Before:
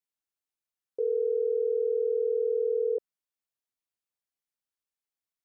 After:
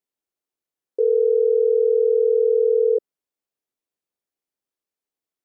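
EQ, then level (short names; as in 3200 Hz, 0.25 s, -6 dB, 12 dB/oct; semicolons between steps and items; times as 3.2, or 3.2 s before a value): bell 380 Hz +10.5 dB 1.9 oct; 0.0 dB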